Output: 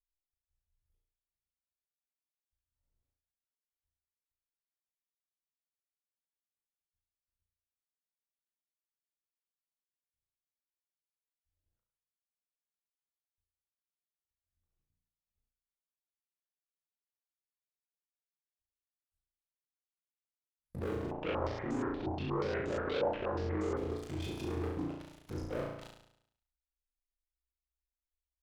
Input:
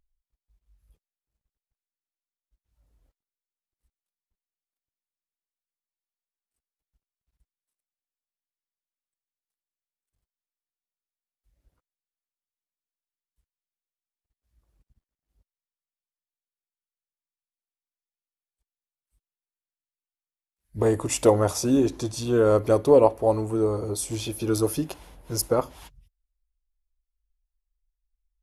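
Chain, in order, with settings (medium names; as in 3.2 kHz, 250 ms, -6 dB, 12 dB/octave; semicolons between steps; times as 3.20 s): low-pass that closes with the level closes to 780 Hz, closed at -23 dBFS; dynamic bell 430 Hz, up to +3 dB, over -30 dBFS, Q 1; waveshaping leveller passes 5; peak limiter -24 dBFS, peak gain reduction 20 dB; ring modulator 23 Hz; flutter echo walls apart 6 m, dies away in 0.73 s; 21.11–23.77 s: step-sequenced low-pass 8.4 Hz 800–7000 Hz; trim -8.5 dB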